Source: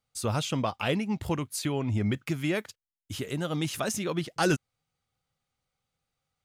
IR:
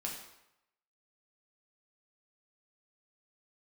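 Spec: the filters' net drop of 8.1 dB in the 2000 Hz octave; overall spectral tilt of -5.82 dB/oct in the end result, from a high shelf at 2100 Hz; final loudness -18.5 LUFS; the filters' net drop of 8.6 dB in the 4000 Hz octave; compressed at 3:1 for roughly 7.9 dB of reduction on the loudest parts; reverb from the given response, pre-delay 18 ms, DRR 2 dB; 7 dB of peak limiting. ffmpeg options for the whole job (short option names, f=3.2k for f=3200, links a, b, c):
-filter_complex "[0:a]equalizer=f=2k:t=o:g=-8,highshelf=f=2.1k:g=-4,equalizer=f=4k:t=o:g=-4.5,acompressor=threshold=-32dB:ratio=3,alimiter=level_in=5dB:limit=-24dB:level=0:latency=1,volume=-5dB,asplit=2[a][b];[1:a]atrim=start_sample=2205,adelay=18[c];[b][c]afir=irnorm=-1:irlink=0,volume=-2.5dB[d];[a][d]amix=inputs=2:normalize=0,volume=17.5dB"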